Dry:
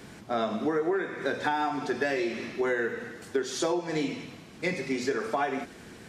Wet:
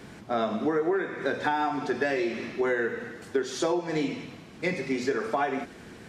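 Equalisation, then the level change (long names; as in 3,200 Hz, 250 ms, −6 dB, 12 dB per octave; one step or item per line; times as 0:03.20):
high-shelf EQ 4,500 Hz −5.5 dB
+1.5 dB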